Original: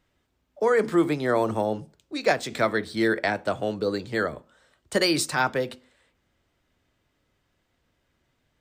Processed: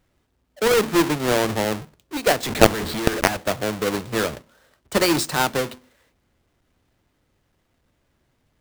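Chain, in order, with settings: square wave that keeps the level; 2.43–3.37 s: companded quantiser 2-bit; trim -1 dB

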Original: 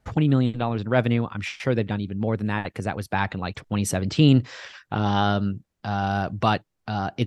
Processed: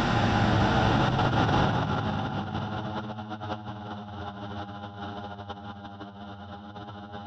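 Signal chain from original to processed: spectral blur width 376 ms; Paulstretch 16×, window 0.10 s, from 4.80 s; compressor with a negative ratio -33 dBFS, ratio -0.5; trim +4 dB

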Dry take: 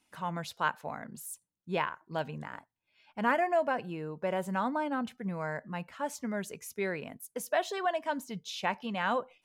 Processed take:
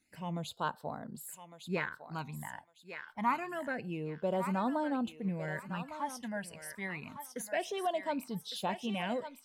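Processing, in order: phase shifter stages 12, 0.27 Hz, lowest notch 380–2300 Hz; thinning echo 1156 ms, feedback 29%, high-pass 920 Hz, level -6.5 dB

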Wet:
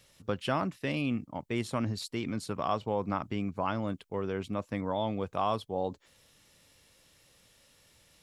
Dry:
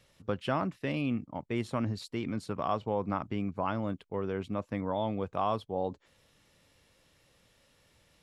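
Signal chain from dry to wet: treble shelf 3.8 kHz +9 dB

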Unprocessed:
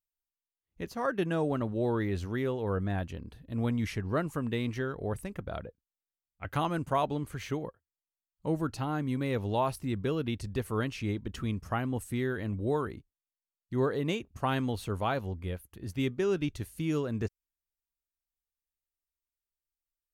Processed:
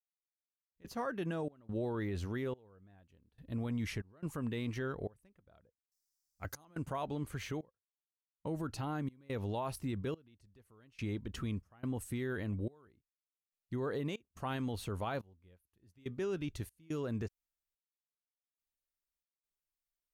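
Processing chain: 5.62–6.65 s: resonant high shelf 4 kHz +11 dB, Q 3; peak limiter -26 dBFS, peak gain reduction 9 dB; trance gate "....xxx.xxxx" 71 bpm -24 dB; trim -2.5 dB

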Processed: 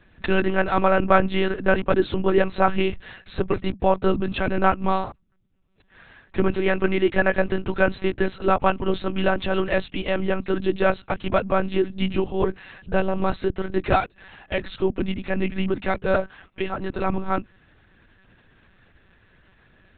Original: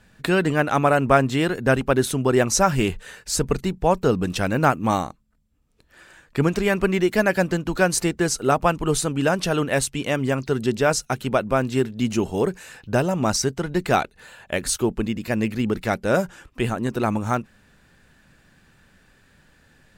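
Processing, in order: 16.14–17.06 s: bass shelf 220 Hz -8.5 dB; monotone LPC vocoder at 8 kHz 190 Hz

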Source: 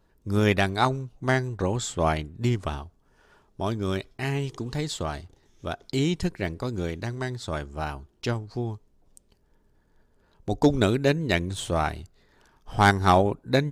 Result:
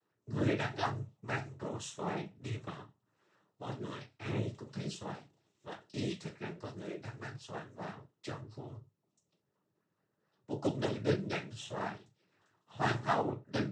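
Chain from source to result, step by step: chord resonator G#2 sus4, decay 0.25 s; noise-vocoded speech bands 12

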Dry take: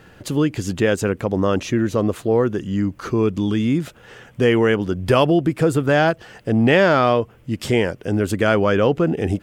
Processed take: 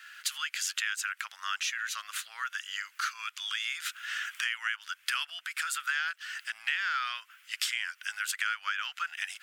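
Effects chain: recorder AGC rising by 14 dB/s; elliptic high-pass 1.4 kHz, stop band 70 dB; compression 6:1, threshold -31 dBFS, peak gain reduction 14 dB; trim +2.5 dB

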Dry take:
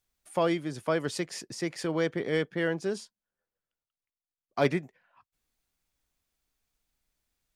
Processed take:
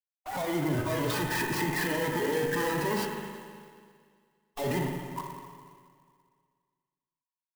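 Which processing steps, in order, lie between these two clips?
1.39–2.03 s: high-pass 130 Hz 12 dB/octave; in parallel at +3 dB: compression, threshold -41 dBFS, peak gain reduction 20.5 dB; on the sum: fuzz box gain 42 dB, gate -50 dBFS; Chebyshev low-pass 2 kHz, order 2; peaking EQ 860 Hz +12 dB 1.4 oct; valve stage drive 32 dB, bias 0.45; spectral noise reduction 13 dB; spring tank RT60 2 s, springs 40/59 ms, chirp 75 ms, DRR 1.5 dB; sampling jitter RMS 0.033 ms; trim +4 dB

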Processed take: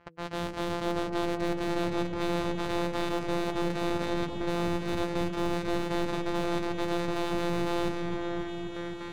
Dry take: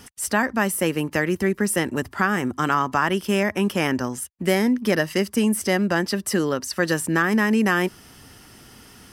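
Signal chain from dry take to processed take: sorted samples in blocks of 256 samples; level-controlled noise filter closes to 2.1 kHz, open at -17 dBFS; gate with hold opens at -38 dBFS; band-stop 3.6 kHz, Q 16; reverse; compression 6:1, threshold -31 dBFS, peak gain reduction 15.5 dB; reverse; de-hum 164.7 Hz, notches 3; saturation -27.5 dBFS, distortion -16 dB; overdrive pedal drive 14 dB, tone 5 kHz, clips at -27.5 dBFS; on a send: delay with an opening low-pass 264 ms, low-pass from 400 Hz, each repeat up 1 oct, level 0 dB; on the sum: trim +4 dB

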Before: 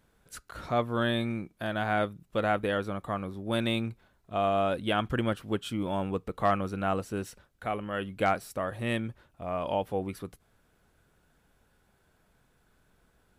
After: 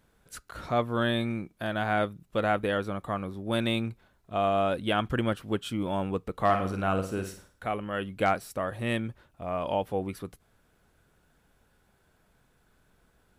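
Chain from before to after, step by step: 6.44–7.66 s: flutter echo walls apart 9 m, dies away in 0.44 s; trim +1 dB

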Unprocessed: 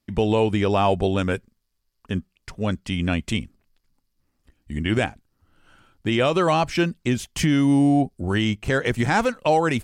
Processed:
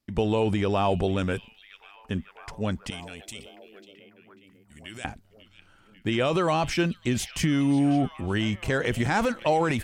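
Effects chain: 2.90–5.05 s: pre-emphasis filter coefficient 0.9; transient shaper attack +2 dB, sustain +8 dB; repeats whose band climbs or falls 544 ms, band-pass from 3.4 kHz, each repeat -0.7 oct, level -11.5 dB; trim -5 dB

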